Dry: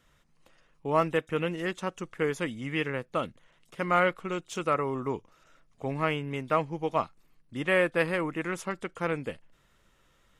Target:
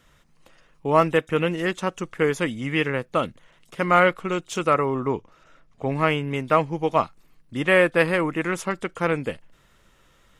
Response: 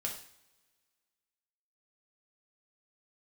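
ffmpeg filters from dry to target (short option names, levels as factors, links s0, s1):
-filter_complex "[0:a]asettb=1/sr,asplit=3[s0][s1][s2];[s0]atrim=end=4.854[s3];[s1]atrim=start=4.85:end=5.92,asetpts=PTS-STARTPTS,afade=t=in:d=0.004:c=qsin,afade=t=out:st=1.066:d=0.004:c=qsin,highshelf=f=6200:g=-11.5[s4];[s2]atrim=start=5.916[s5];[s3][s4]acrossfade=d=0.004:c1=hsin:c2=qsin[s6];[s6][s5]acrossfade=d=0.004:c1=qsin:c2=hsin,volume=2.24"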